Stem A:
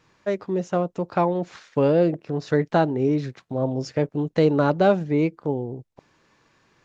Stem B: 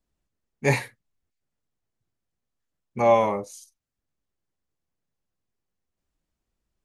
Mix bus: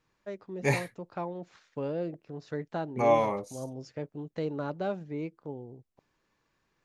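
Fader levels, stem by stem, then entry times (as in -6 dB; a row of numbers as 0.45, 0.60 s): -14.5, -5.0 dB; 0.00, 0.00 s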